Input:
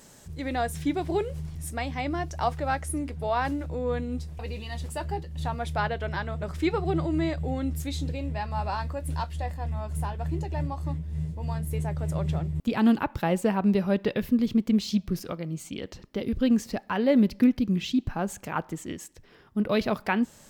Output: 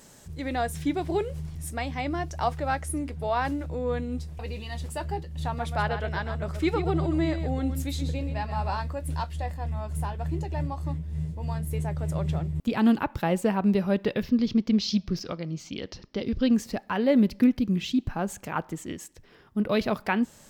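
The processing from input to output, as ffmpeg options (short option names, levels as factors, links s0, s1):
-filter_complex "[0:a]asettb=1/sr,asplit=3[s0][s1][s2];[s0]atrim=end=5.444[s3];[s1]atrim=start=5.44:end=8.8,asetpts=PTS-STARTPTS,afade=t=in:d=0.004:c=qsin,afade=t=out:st=3.356:d=0.004:c=qsin,aecho=1:1:129:0.355,atrim=end_sample=148176[s4];[s2]atrim=start=8.796[s5];[s3][s4]acrossfade=d=0.004:c1=hsin:c2=qsin[s6];[s6][s5]acrossfade=d=0.004:c1=qsin:c2=hsin,asettb=1/sr,asplit=3[s7][s8][s9];[s7]atrim=end=14.234[s10];[s8]atrim=start=14.23:end=16.54,asetpts=PTS-STARTPTS,afade=t=in:d=0.004:c=qsin,afade=t=out:st=2.306:d=0.004:c=qsin,highshelf=f=7100:t=q:w=3:g=-11[s11];[s9]atrim=start=16.536[s12];[s10][s11]acrossfade=d=0.004:c1=hsin:c2=qsin[s13];[s13][s12]acrossfade=d=0.004:c1=qsin:c2=hsin"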